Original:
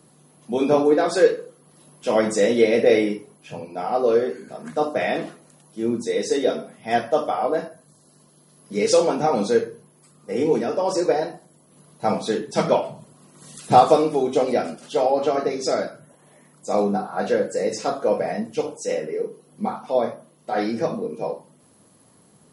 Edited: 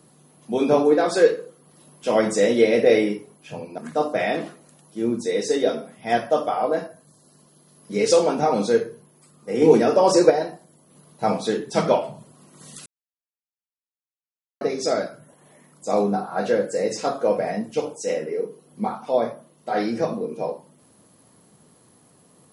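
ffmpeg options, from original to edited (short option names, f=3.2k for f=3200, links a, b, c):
-filter_complex "[0:a]asplit=6[a][b][c][d][e][f];[a]atrim=end=3.782[g];[b]atrim=start=4.588:end=10.432[h];[c]atrim=start=10.428:end=11.112,asetpts=PTS-STARTPTS,volume=6dB[i];[d]atrim=start=11.108:end=13.67,asetpts=PTS-STARTPTS,afade=t=out:st=2.558:d=0.004:c=hsin[j];[e]atrim=start=13.67:end=15.42,asetpts=PTS-STARTPTS,volume=0[k];[f]atrim=start=15.42,asetpts=PTS-STARTPTS,afade=t=in:d=0.004:c=hsin[l];[g][h]acrossfade=d=0.004:c1=hsin:c2=hsin[m];[m][i]acrossfade=d=0.004:c1=hsin:c2=hsin[n];[j][k][l]concat=n=3:v=0:a=1[o];[n][o]acrossfade=d=0.004:c1=hsin:c2=hsin"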